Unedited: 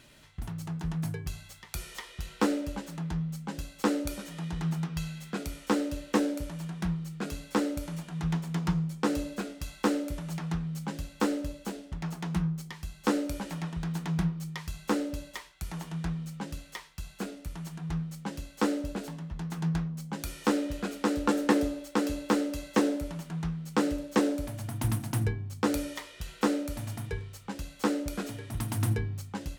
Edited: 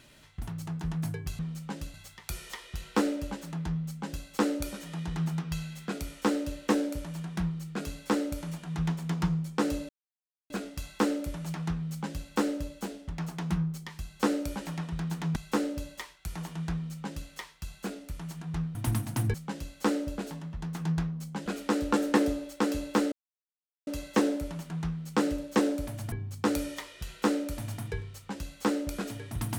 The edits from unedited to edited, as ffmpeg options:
-filter_complex "[0:a]asplit=10[s0][s1][s2][s3][s4][s5][s6][s7][s8][s9];[s0]atrim=end=1.392[s10];[s1]atrim=start=16.098:end=16.652[s11];[s2]atrim=start=1.388:end=9.34,asetpts=PTS-STARTPTS,afade=t=out:st=7.948:d=0.004:c=hsin,apad=pad_dur=0.61[s12];[s3]atrim=start=9.34:end=14.202,asetpts=PTS-STARTPTS,afade=t=in:d=0.004:c=hsin[s13];[s4]atrim=start=14.718:end=18.112[s14];[s5]atrim=start=24.718:end=25.312[s15];[s6]atrim=start=18.108:end=20.232[s16];[s7]atrim=start=20.808:end=22.47,asetpts=PTS-STARTPTS,afade=t=out:st=1.658:d=0.004:c=hsin,apad=pad_dur=0.75[s17];[s8]atrim=start=22.47:end=24.722,asetpts=PTS-STARTPTS,afade=t=in:d=0.004:c=hsin[s18];[s9]atrim=start=25.308[s19];[s10][s11]acrossfade=d=0.004:c1=hsin:c2=hsin[s20];[s12][s13]concat=n=2:v=0:a=1[s21];[s20][s21]acrossfade=d=0.004:c1=hsin:c2=hsin[s22];[s22][s14]acrossfade=d=0.004:c1=hsin:c2=hsin[s23];[s23][s15]acrossfade=d=0.004:c1=hsin:c2=hsin[s24];[s24][s16]acrossfade=d=0.004:c1=hsin:c2=hsin[s25];[s17][s18]concat=n=2:v=0:a=1[s26];[s25][s26]acrossfade=d=0.004:c1=hsin:c2=hsin[s27];[s27][s19]acrossfade=d=0.004:c1=hsin:c2=hsin"

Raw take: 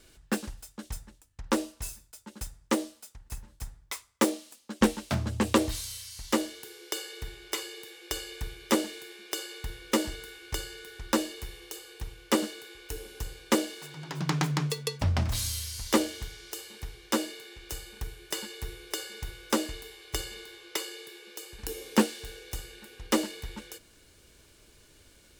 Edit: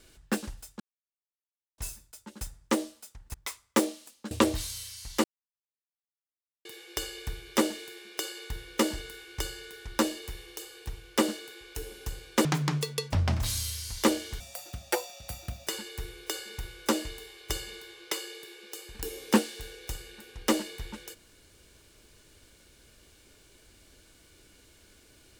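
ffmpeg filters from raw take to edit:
-filter_complex "[0:a]asplit=10[s0][s1][s2][s3][s4][s5][s6][s7][s8][s9];[s0]atrim=end=0.8,asetpts=PTS-STARTPTS,afade=t=out:st=0.796:d=0.004:c=hsin[s10];[s1]atrim=start=0.8:end=1.78,asetpts=PTS-STARTPTS,volume=0[s11];[s2]atrim=start=1.78:end=3.342,asetpts=PTS-STARTPTS,afade=t=in:d=0.004:c=hsin[s12];[s3]atrim=start=3.788:end=4.762[s13];[s4]atrim=start=5.448:end=6.38,asetpts=PTS-STARTPTS,afade=t=out:st=0.928:d=0.004:c=hsin[s14];[s5]atrim=start=6.38:end=7.79,asetpts=PTS-STARTPTS,volume=0[s15];[s6]atrim=start=7.79:end=13.592,asetpts=PTS-STARTPTS,afade=t=in:d=0.004:c=hsin[s16];[s7]atrim=start=14.338:end=16.294[s17];[s8]atrim=start=16.29:end=18.31,asetpts=PTS-STARTPTS,asetrate=70119,aresample=44100,atrim=end_sample=56026,asetpts=PTS-STARTPTS[s18];[s9]atrim=start=18.306[s19];[s10][s11][s12]concat=n=3:v=0:a=1[s20];[s20][s13]acrossfade=d=0.004:c1=hsin:c2=hsin[s21];[s14][s15][s16]concat=n=3:v=0:a=1[s22];[s21][s22]acrossfade=d=0.004:c1=hsin:c2=hsin[s23];[s23][s17]acrossfade=d=0.004:c1=hsin:c2=hsin[s24];[s24][s18]acrossfade=d=0.004:c1=hsin:c2=hsin[s25];[s25][s19]acrossfade=d=0.004:c1=hsin:c2=hsin"

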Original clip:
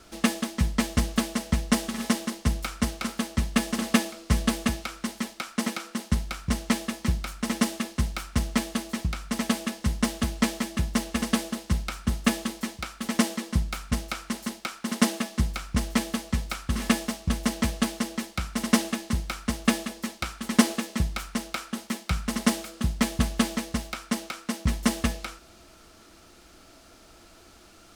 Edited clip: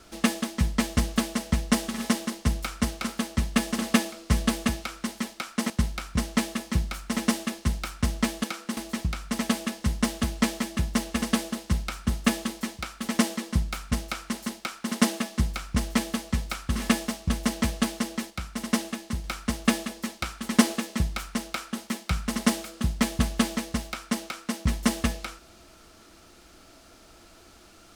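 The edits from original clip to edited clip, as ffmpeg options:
-filter_complex "[0:a]asplit=6[s0][s1][s2][s3][s4][s5];[s0]atrim=end=5.702[s6];[s1]atrim=start=6.028:end=8.772[s7];[s2]atrim=start=5.698:end=6.032[s8];[s3]atrim=start=8.768:end=18.302[s9];[s4]atrim=start=18.298:end=19.242,asetpts=PTS-STARTPTS,volume=0.631[s10];[s5]atrim=start=19.238[s11];[s6][s7]acrossfade=d=0.004:c1=hsin:c2=hsin[s12];[s12][s8]acrossfade=d=0.004:c1=hsin:c2=hsin[s13];[s13][s9]acrossfade=d=0.004:c1=hsin:c2=hsin[s14];[s14][s10]acrossfade=d=0.004:c1=hsin:c2=hsin[s15];[s15][s11]acrossfade=d=0.004:c1=hsin:c2=hsin"

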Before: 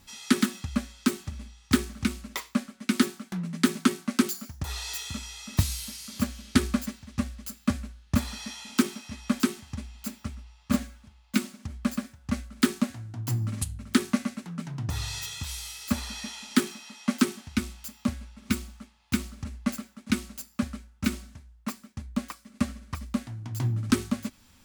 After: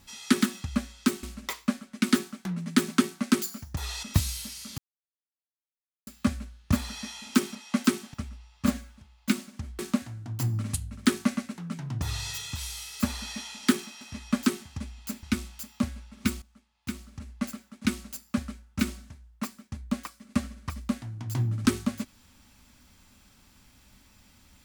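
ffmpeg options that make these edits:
-filter_complex "[0:a]asplit=11[s0][s1][s2][s3][s4][s5][s6][s7][s8][s9][s10];[s0]atrim=end=1.232[s11];[s1]atrim=start=2.098:end=4.902[s12];[s2]atrim=start=5.458:end=6.21,asetpts=PTS-STARTPTS,afade=t=out:st=0.748:d=0.004:c=hsin[s13];[s3]atrim=start=6.21:end=7.5,asetpts=PTS-STARTPTS,volume=0[s14];[s4]atrim=start=7.5:end=8.982,asetpts=PTS-STARTPTS,afade=t=in:d=0.004:c=hsin[s15];[s5]atrim=start=16.888:end=17.482[s16];[s6]atrim=start=10.198:end=11.852[s17];[s7]atrim=start=12.668:end=16.892[s18];[s8]atrim=start=8.978:end=10.202[s19];[s9]atrim=start=17.478:end=18.67,asetpts=PTS-STARTPTS,afade=t=out:st=1.188:d=0.004:c=hsin:silence=0.158489[s20];[s10]atrim=start=18.67,asetpts=PTS-STARTPTS,afade=t=in:d=1.59:silence=0.158489[s21];[s11][s12]acrossfade=d=0.004:c1=hsin:c2=hsin[s22];[s13][s14][s15]concat=n=3:v=0:a=1[s23];[s22][s23]acrossfade=d=0.004:c1=hsin:c2=hsin[s24];[s24][s16]acrossfade=d=0.004:c1=hsin:c2=hsin[s25];[s25][s17]acrossfade=d=0.004:c1=hsin:c2=hsin[s26];[s26][s18]acrossfade=d=0.004:c1=hsin:c2=hsin[s27];[s27][s19]acrossfade=d=0.004:c1=hsin:c2=hsin[s28];[s20][s21]concat=n=2:v=0:a=1[s29];[s28][s29]acrossfade=d=0.004:c1=hsin:c2=hsin"

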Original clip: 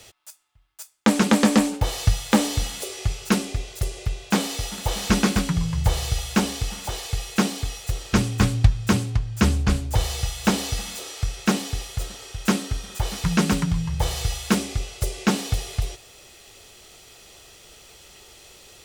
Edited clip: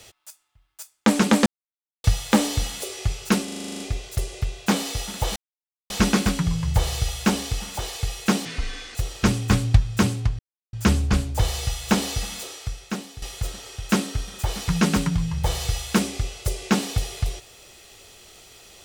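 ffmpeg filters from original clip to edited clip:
-filter_complex "[0:a]asplit=17[s0][s1][s2][s3][s4][s5][s6][s7][s8][s9][s10][s11][s12][s13][s14][s15][s16];[s0]atrim=end=1.46,asetpts=PTS-STARTPTS,afade=t=out:st=1.456:d=0.004:c=hsin[s17];[s1]atrim=start=1.46:end=2.04,asetpts=PTS-STARTPTS,volume=0[s18];[s2]atrim=start=2.04:end=3.482,asetpts=PTS-STARTPTS,afade=t=in:d=0.004:c=hsin[s19];[s3]atrim=start=3.438:end=3.482[s20];[s4]atrim=start=3.438:end=3.482[s21];[s5]atrim=start=3.438:end=3.482[s22];[s6]atrim=start=3.438:end=3.482[s23];[s7]atrim=start=3.438:end=3.482[s24];[s8]atrim=start=3.438:end=3.482[s25];[s9]atrim=start=3.438:end=3.482[s26];[s10]atrim=start=3.438:end=3.482[s27];[s11]atrim=start=3.438:end=5,asetpts=PTS-STARTPTS,afade=t=out:st=1.558:d=0.004:c=hsin,apad=pad_dur=0.54[s28];[s12]atrim=start=5:end=7.554,asetpts=PTS-STARTPTS,afade=t=in:d=0.004:c=hsin[s29];[s13]atrim=start=7.55:end=7.85,asetpts=PTS-STARTPTS,asetrate=26460,aresample=44100[s30];[s14]atrim=start=7.846:end=9.29,asetpts=PTS-STARTPTS,afade=t=out:st=1.44:d=0.004:c=hsin,apad=pad_dur=0.34[s31];[s15]atrim=start=9.29:end=11.78,asetpts=PTS-STARTPTS,afade=t=in:d=0.004:c=hsin,afade=t=out:st=1.68:d=0.81:c=qua:silence=0.266073[s32];[s16]atrim=start=11.78,asetpts=PTS-STARTPTS,afade=t=in:d=0.004:c=hsin:silence=0.266073[s33];[s17][s18][s19]concat=n=3:v=0:a=1[s34];[s34][s20]acrossfade=d=0.004:c1=hsin:c2=hsin[s35];[s35][s21]acrossfade=d=0.004:c1=hsin:c2=hsin[s36];[s36][s22]acrossfade=d=0.004:c1=hsin:c2=hsin[s37];[s37][s23]acrossfade=d=0.004:c1=hsin:c2=hsin[s38];[s38][s24]acrossfade=d=0.004:c1=hsin:c2=hsin[s39];[s39][s25]acrossfade=d=0.004:c1=hsin:c2=hsin[s40];[s40][s26]acrossfade=d=0.004:c1=hsin:c2=hsin[s41];[s41][s27]acrossfade=d=0.004:c1=hsin:c2=hsin[s42];[s28][s29]concat=n=2:v=0:a=1[s43];[s42][s43]acrossfade=d=0.004:c1=hsin:c2=hsin[s44];[s44][s30]acrossfade=d=0.004:c1=hsin:c2=hsin[s45];[s31][s32][s33]concat=n=3:v=0:a=1[s46];[s45][s46]acrossfade=d=0.004:c1=hsin:c2=hsin"

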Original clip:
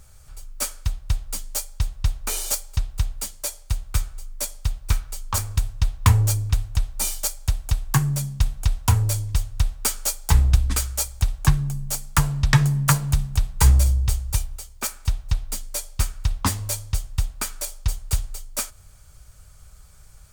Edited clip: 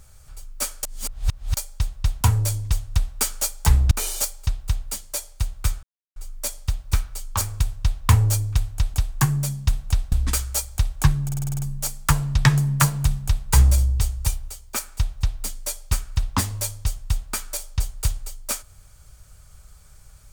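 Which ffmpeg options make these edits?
-filter_complex "[0:a]asplit=15[s0][s1][s2][s3][s4][s5][s6][s7][s8][s9][s10][s11][s12][s13][s14];[s0]atrim=end=0.832[s15];[s1]atrim=start=0.828:end=1.572,asetpts=PTS-STARTPTS,areverse[s16];[s2]atrim=start=1.568:end=2.212[s17];[s3]atrim=start=8.848:end=10.552[s18];[s4]atrim=start=2.208:end=4.13,asetpts=PTS-STARTPTS,afade=t=out:st=1.918:d=0.004:c=hsin,apad=pad_dur=0.33[s19];[s5]atrim=start=4.13:end=6.912,asetpts=PTS-STARTPTS,afade=t=in:d=0.004:c=hsin[s20];[s6]atrim=start=7.668:end=8.852[s21];[s7]atrim=start=10.548:end=11.722[s22];[s8]atrim=start=11.668:end=11.722[s23];[s9]atrim=start=11.668:end=11.722[s24];[s10]atrim=start=11.668:end=11.722[s25];[s11]atrim=start=11.668:end=11.722[s26];[s12]atrim=start=11.668:end=11.722[s27];[s13]atrim=start=11.668:end=11.722[s28];[s14]atrim=start=11.668[s29];[s15][s16]acrossfade=d=0.004:c1=hsin:c2=hsin[s30];[s30][s17]acrossfade=d=0.004:c1=hsin:c2=hsin[s31];[s31][s18]acrossfade=d=0.004:c1=hsin:c2=hsin[s32];[s19][s20]concat=n=2:v=0:a=1[s33];[s32][s33]acrossfade=d=0.004:c1=hsin:c2=hsin[s34];[s34][s21]acrossfade=d=0.004:c1=hsin:c2=hsin[s35];[s35][s22]acrossfade=d=0.004:c1=hsin:c2=hsin[s36];[s36][s23]acrossfade=d=0.004:c1=hsin:c2=hsin[s37];[s37][s24]acrossfade=d=0.004:c1=hsin:c2=hsin[s38];[s38][s25]acrossfade=d=0.004:c1=hsin:c2=hsin[s39];[s39][s26]acrossfade=d=0.004:c1=hsin:c2=hsin[s40];[s40][s27]acrossfade=d=0.004:c1=hsin:c2=hsin[s41];[s41][s28]acrossfade=d=0.004:c1=hsin:c2=hsin[s42];[s42][s29]acrossfade=d=0.004:c1=hsin:c2=hsin"

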